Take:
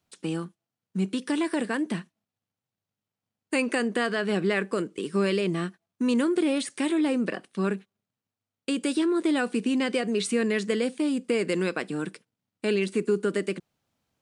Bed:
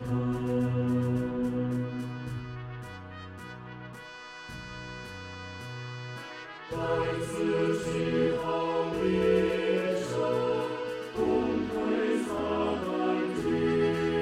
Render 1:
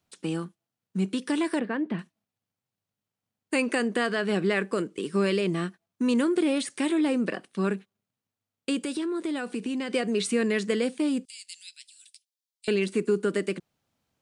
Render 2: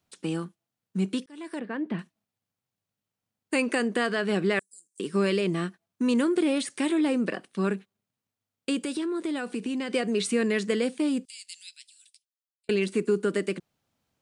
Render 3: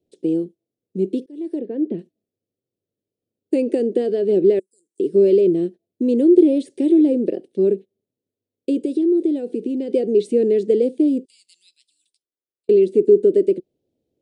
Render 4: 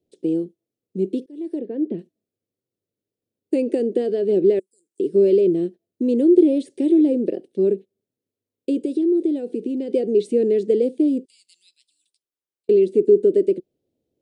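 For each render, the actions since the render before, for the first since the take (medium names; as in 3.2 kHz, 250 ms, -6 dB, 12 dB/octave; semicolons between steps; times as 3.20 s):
1.59–1.99 s: distance through air 370 m; 8.77–9.94 s: compression 2.5:1, threshold -29 dBFS; 11.25–12.68 s: inverse Chebyshev high-pass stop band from 1.1 kHz, stop band 60 dB
1.26–1.97 s: fade in; 4.59–5.00 s: inverse Chebyshev high-pass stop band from 2.8 kHz, stop band 50 dB; 11.67–12.69 s: fade out
FFT filter 200 Hz 0 dB, 370 Hz +15 dB, 540 Hz +8 dB, 1.2 kHz -28 dB, 1.8 kHz -18 dB, 3.6 kHz -8 dB, 5.9 kHz -12 dB
trim -1.5 dB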